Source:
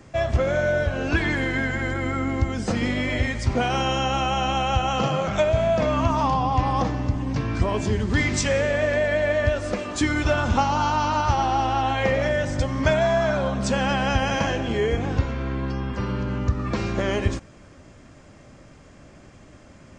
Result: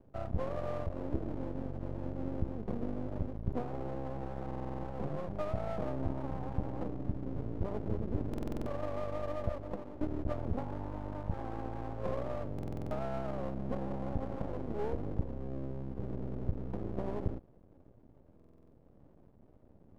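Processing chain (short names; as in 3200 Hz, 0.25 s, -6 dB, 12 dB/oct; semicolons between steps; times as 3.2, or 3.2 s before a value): inverse Chebyshev low-pass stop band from 2000 Hz, stop band 60 dB; half-wave rectifier; stuck buffer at 4.46/8.29/12.54/18.35, samples 2048, times 7; gain -8 dB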